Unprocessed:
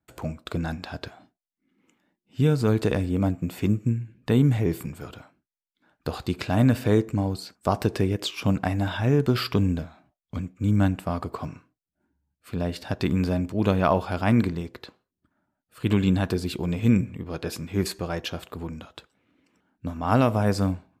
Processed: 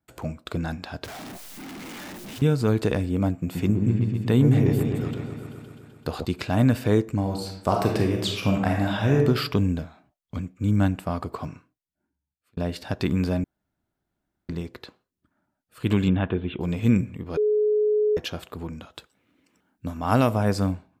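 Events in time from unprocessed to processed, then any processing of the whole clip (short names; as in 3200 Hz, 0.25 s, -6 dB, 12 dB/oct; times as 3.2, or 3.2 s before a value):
1.04–2.42 infinite clipping
3.34–6.25 repeats that get brighter 0.128 s, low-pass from 750 Hz, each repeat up 1 oct, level -3 dB
7.21–9.18 reverb throw, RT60 0.82 s, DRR 1 dB
11.49–12.57 fade out
13.44–14.49 room tone
16.08–16.61 steep low-pass 3500 Hz 96 dB/oct
17.37–18.17 bleep 423 Hz -18 dBFS
18.93–20.34 high shelf 6400 Hz +8.5 dB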